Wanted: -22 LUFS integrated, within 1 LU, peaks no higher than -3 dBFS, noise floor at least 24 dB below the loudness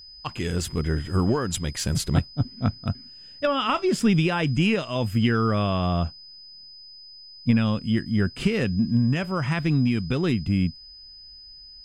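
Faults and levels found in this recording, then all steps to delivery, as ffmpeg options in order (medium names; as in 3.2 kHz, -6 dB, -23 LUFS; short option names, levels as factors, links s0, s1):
steady tone 5 kHz; tone level -43 dBFS; loudness -24.5 LUFS; peak level -8.0 dBFS; loudness target -22.0 LUFS
-> -af "bandreject=f=5000:w=30"
-af "volume=1.33"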